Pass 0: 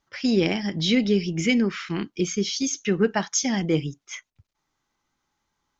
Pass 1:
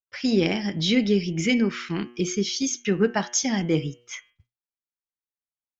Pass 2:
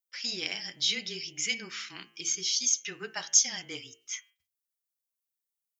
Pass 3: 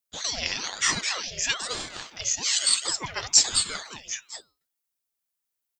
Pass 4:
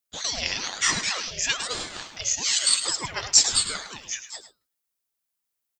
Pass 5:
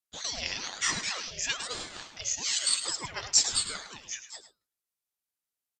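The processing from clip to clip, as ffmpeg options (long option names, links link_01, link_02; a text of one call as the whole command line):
ffmpeg -i in.wav -af "bandreject=frequency=120.3:width_type=h:width=4,bandreject=frequency=240.6:width_type=h:width=4,bandreject=frequency=360.9:width_type=h:width=4,bandreject=frequency=481.2:width_type=h:width=4,bandreject=frequency=601.5:width_type=h:width=4,bandreject=frequency=721.8:width_type=h:width=4,bandreject=frequency=842.1:width_type=h:width=4,bandreject=frequency=962.4:width_type=h:width=4,bandreject=frequency=1082.7:width_type=h:width=4,bandreject=frequency=1203:width_type=h:width=4,bandreject=frequency=1323.3:width_type=h:width=4,bandreject=frequency=1443.6:width_type=h:width=4,bandreject=frequency=1563.9:width_type=h:width=4,bandreject=frequency=1684.2:width_type=h:width=4,bandreject=frequency=1804.5:width_type=h:width=4,bandreject=frequency=1924.8:width_type=h:width=4,bandreject=frequency=2045.1:width_type=h:width=4,bandreject=frequency=2165.4:width_type=h:width=4,bandreject=frequency=2285.7:width_type=h:width=4,bandreject=frequency=2406:width_type=h:width=4,bandreject=frequency=2526.3:width_type=h:width=4,bandreject=frequency=2646.6:width_type=h:width=4,bandreject=frequency=2766.9:width_type=h:width=4,bandreject=frequency=2887.2:width_type=h:width=4,bandreject=frequency=3007.5:width_type=h:width=4,bandreject=frequency=3127.8:width_type=h:width=4,bandreject=frequency=3248.1:width_type=h:width=4,agate=range=-33dB:threshold=-50dB:ratio=3:detection=peak" out.wav
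ffmpeg -i in.wav -af "aderivative,bandreject=frequency=59.58:width_type=h:width=4,bandreject=frequency=119.16:width_type=h:width=4,bandreject=frequency=178.74:width_type=h:width=4,bandreject=frequency=238.32:width_type=h:width=4,bandreject=frequency=297.9:width_type=h:width=4,bandreject=frequency=357.48:width_type=h:width=4,bandreject=frequency=417.06:width_type=h:width=4,bandreject=frequency=476.64:width_type=h:width=4,bandreject=frequency=536.22:width_type=h:width=4,bandreject=frequency=595.8:width_type=h:width=4,bandreject=frequency=655.38:width_type=h:width=4,bandreject=frequency=714.96:width_type=h:width=4,afreqshift=-21,volume=4.5dB" out.wav
ffmpeg -i in.wav -af "aecho=1:1:212:0.473,aeval=exprs='val(0)*sin(2*PI*1100*n/s+1100*0.8/1.1*sin(2*PI*1.1*n/s))':channel_layout=same,volume=7dB" out.wav
ffmpeg -i in.wav -af "aecho=1:1:106:0.251,volume=1dB" out.wav
ffmpeg -i in.wav -af "aresample=32000,aresample=44100,volume=-6dB" out.wav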